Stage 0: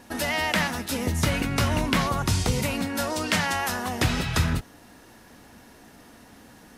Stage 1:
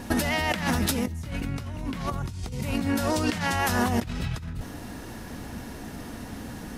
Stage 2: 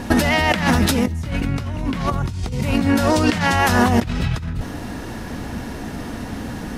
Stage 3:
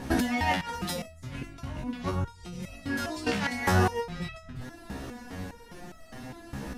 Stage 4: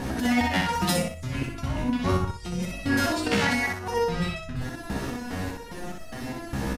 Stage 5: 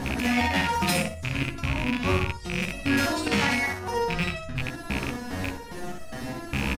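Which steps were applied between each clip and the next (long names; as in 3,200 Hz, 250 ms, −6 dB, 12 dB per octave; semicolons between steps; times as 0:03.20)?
low-shelf EQ 250 Hz +10 dB; compressor whose output falls as the input rises −29 dBFS, ratio −1
high-shelf EQ 7,500 Hz −8.5 dB; level +9 dB
step-sequenced resonator 4.9 Hz 67–650 Hz
compressor whose output falls as the input rises −29 dBFS, ratio −0.5; on a send: repeating echo 62 ms, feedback 28%, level −4 dB; on the sum: level +5 dB
loose part that buzzes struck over −29 dBFS, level −16 dBFS; in parallel at −11.5 dB: hard clipping −24 dBFS, distortion −9 dB; on the sum: double-tracking delay 14 ms −11 dB; level −2 dB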